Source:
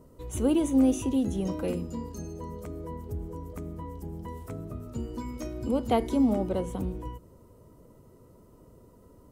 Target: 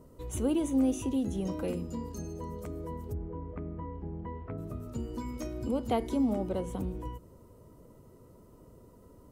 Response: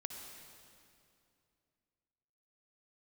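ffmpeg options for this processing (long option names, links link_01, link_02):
-filter_complex "[0:a]asplit=3[link_01][link_02][link_03];[link_01]afade=type=out:start_time=3.13:duration=0.02[link_04];[link_02]lowpass=frequency=2400:width=0.5412,lowpass=frequency=2400:width=1.3066,afade=type=in:start_time=3.13:duration=0.02,afade=type=out:start_time=4.57:duration=0.02[link_05];[link_03]afade=type=in:start_time=4.57:duration=0.02[link_06];[link_04][link_05][link_06]amix=inputs=3:normalize=0,asplit=2[link_07][link_08];[link_08]acompressor=threshold=-33dB:ratio=6,volume=0dB[link_09];[link_07][link_09]amix=inputs=2:normalize=0,volume=-6.5dB"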